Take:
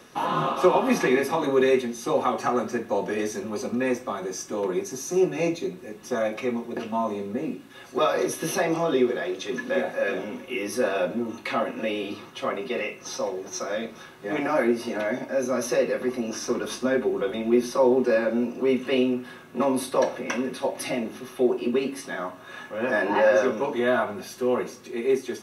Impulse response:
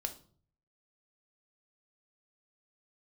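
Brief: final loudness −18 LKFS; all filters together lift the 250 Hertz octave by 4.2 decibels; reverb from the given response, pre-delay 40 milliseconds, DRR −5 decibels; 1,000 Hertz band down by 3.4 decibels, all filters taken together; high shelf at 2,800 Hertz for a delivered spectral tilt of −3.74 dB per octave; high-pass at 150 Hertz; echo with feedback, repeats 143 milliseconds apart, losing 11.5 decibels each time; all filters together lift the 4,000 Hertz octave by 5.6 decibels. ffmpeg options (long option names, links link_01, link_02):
-filter_complex "[0:a]highpass=150,equalizer=frequency=250:width_type=o:gain=6,equalizer=frequency=1000:width_type=o:gain=-5.5,highshelf=frequency=2800:gain=3,equalizer=frequency=4000:width_type=o:gain=5,aecho=1:1:143|286|429:0.266|0.0718|0.0194,asplit=2[link_01][link_02];[1:a]atrim=start_sample=2205,adelay=40[link_03];[link_02][link_03]afir=irnorm=-1:irlink=0,volume=5dB[link_04];[link_01][link_04]amix=inputs=2:normalize=0,volume=-1.5dB"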